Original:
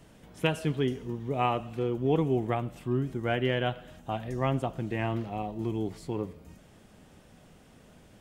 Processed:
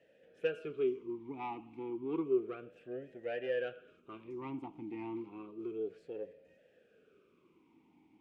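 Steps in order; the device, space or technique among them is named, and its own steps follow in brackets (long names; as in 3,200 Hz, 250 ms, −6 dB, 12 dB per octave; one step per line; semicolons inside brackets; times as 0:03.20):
talk box (tube saturation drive 20 dB, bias 0.5; formant filter swept between two vowels e-u 0.31 Hz)
level +4 dB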